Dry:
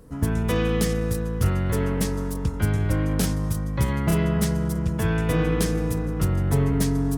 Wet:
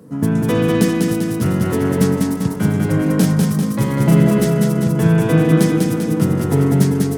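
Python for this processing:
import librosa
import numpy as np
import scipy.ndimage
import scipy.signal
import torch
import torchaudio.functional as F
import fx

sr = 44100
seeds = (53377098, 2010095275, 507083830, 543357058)

p1 = scipy.signal.sosfilt(scipy.signal.butter(4, 150.0, 'highpass', fs=sr, output='sos'), x)
p2 = fx.low_shelf(p1, sr, hz=350.0, db=11.5)
p3 = p2 + fx.echo_feedback(p2, sr, ms=197, feedback_pct=56, wet_db=-3.0, dry=0)
y = F.gain(torch.from_numpy(p3), 2.5).numpy()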